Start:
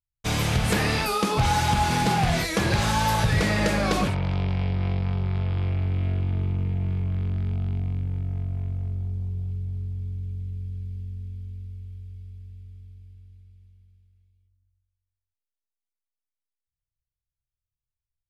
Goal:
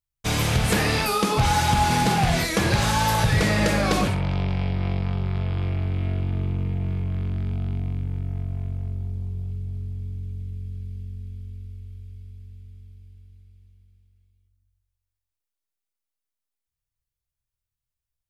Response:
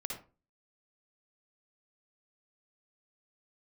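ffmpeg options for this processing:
-filter_complex "[0:a]asplit=2[link_01][link_02];[1:a]atrim=start_sample=2205,highshelf=frequency=5300:gain=11[link_03];[link_02][link_03]afir=irnorm=-1:irlink=0,volume=-11dB[link_04];[link_01][link_04]amix=inputs=2:normalize=0"

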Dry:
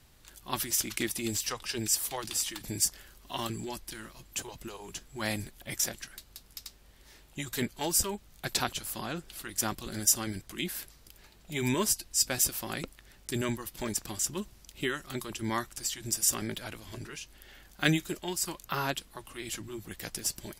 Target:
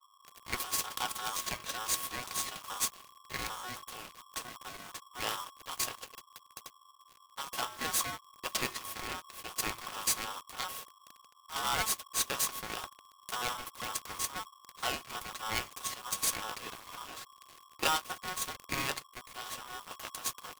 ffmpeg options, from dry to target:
ffmpeg -i in.wav -filter_complex "[0:a]bandreject=frequency=239.8:width_type=h:width=4,bandreject=frequency=479.6:width_type=h:width=4,bandreject=frequency=719.4:width_type=h:width=4,bandreject=frequency=959.2:width_type=h:width=4,bandreject=frequency=1199:width_type=h:width=4,bandreject=frequency=1438.8:width_type=h:width=4,bandreject=frequency=1678.6:width_type=h:width=4,bandreject=frequency=1918.4:width_type=h:width=4,bandreject=frequency=2158.2:width_type=h:width=4,bandreject=frequency=2398:width_type=h:width=4,bandreject=frequency=2637.8:width_type=h:width=4,acrossover=split=130[link_01][link_02];[link_02]acrusher=bits=5:dc=4:mix=0:aa=0.000001[link_03];[link_01][link_03]amix=inputs=2:normalize=0,asoftclip=type=tanh:threshold=-22dB,equalizer=frequency=1600:width=0.87:gain=5.5,aeval=exprs='val(0)*sgn(sin(2*PI*1100*n/s))':channel_layout=same,volume=-1.5dB" out.wav

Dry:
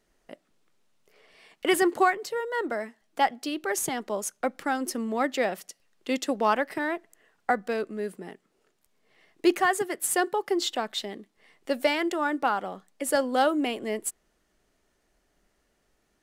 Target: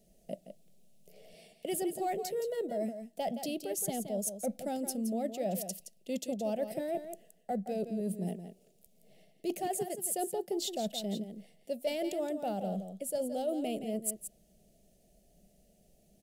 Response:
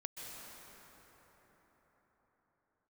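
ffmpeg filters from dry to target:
-af "acontrast=30,firequalizer=gain_entry='entry(100,0);entry(190,10);entry(280,-6);entry(450,-2);entry(660,4);entry(1000,-28);entry(1400,-25);entry(2600,-8);entry(6100,-3);entry(11000,4)':delay=0.05:min_phase=1,areverse,acompressor=threshold=-33dB:ratio=5,areverse,aecho=1:1:170:0.335"

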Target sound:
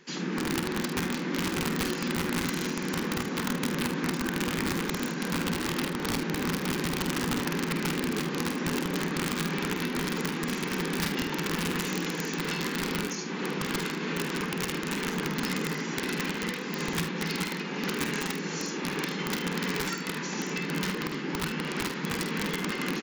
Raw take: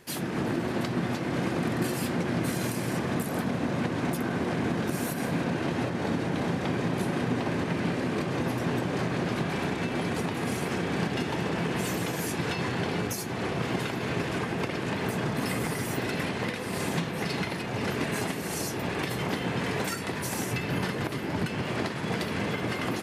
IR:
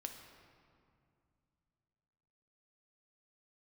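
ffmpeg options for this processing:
-af "aeval=exprs='0.178*(cos(1*acos(clip(val(0)/0.178,-1,1)))-cos(1*PI/2))+0.00141*(cos(6*acos(clip(val(0)/0.178,-1,1)))-cos(6*PI/2))':channel_layout=same,afftfilt=real='re*between(b*sr/4096,140,7300)':imag='im*between(b*sr/4096,140,7300)':win_size=4096:overlap=0.75,aeval=exprs='(mod(11.2*val(0)+1,2)-1)/11.2':channel_layout=same,equalizer=frequency=660:width=3:gain=-14,aecho=1:1:49|76:0.398|0.237"

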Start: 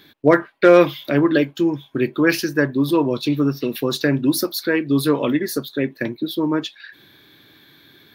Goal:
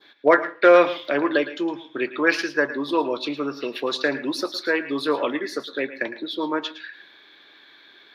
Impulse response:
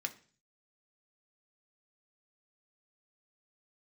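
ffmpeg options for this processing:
-filter_complex "[0:a]highpass=540,lowpass=4000,asplit=2[link_01][link_02];[1:a]atrim=start_sample=2205,adelay=110[link_03];[link_02][link_03]afir=irnorm=-1:irlink=0,volume=-12.5dB[link_04];[link_01][link_04]amix=inputs=2:normalize=0,adynamicequalizer=threshold=0.0126:dfrequency=2400:dqfactor=0.99:tfrequency=2400:tqfactor=0.99:attack=5:release=100:ratio=0.375:range=2:mode=cutabove:tftype=bell,volume=2dB"

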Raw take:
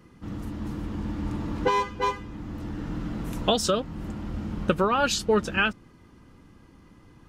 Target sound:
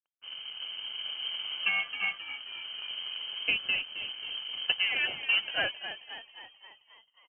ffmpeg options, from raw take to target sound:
ffmpeg -i in.wav -filter_complex "[0:a]acrusher=bits=3:mode=log:mix=0:aa=0.000001,aeval=exprs='sgn(val(0))*max(abs(val(0))-0.00891,0)':channel_layout=same,asuperstop=centerf=1300:order=4:qfactor=5,asplit=8[link_01][link_02][link_03][link_04][link_05][link_06][link_07][link_08];[link_02]adelay=266,afreqshift=-69,volume=-11dB[link_09];[link_03]adelay=532,afreqshift=-138,volume=-15.7dB[link_10];[link_04]adelay=798,afreqshift=-207,volume=-20.5dB[link_11];[link_05]adelay=1064,afreqshift=-276,volume=-25.2dB[link_12];[link_06]adelay=1330,afreqshift=-345,volume=-29.9dB[link_13];[link_07]adelay=1596,afreqshift=-414,volume=-34.7dB[link_14];[link_08]adelay=1862,afreqshift=-483,volume=-39.4dB[link_15];[link_01][link_09][link_10][link_11][link_12][link_13][link_14][link_15]amix=inputs=8:normalize=0,lowpass=frequency=2700:width_type=q:width=0.5098,lowpass=frequency=2700:width_type=q:width=0.6013,lowpass=frequency=2700:width_type=q:width=0.9,lowpass=frequency=2700:width_type=q:width=2.563,afreqshift=-3200,volume=-5dB" out.wav

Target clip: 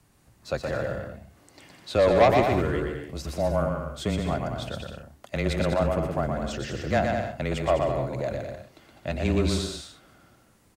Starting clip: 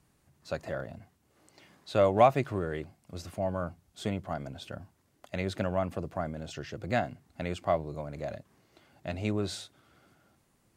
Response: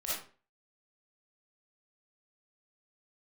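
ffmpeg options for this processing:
-af "aeval=exprs='0.335*(cos(1*acos(clip(val(0)/0.335,-1,1)))-cos(1*PI/2))+0.0668*(cos(5*acos(clip(val(0)/0.335,-1,1)))-cos(5*PI/2))':channel_layout=same,afreqshift=-19,aecho=1:1:120|204|262.8|304|332.8:0.631|0.398|0.251|0.158|0.1"

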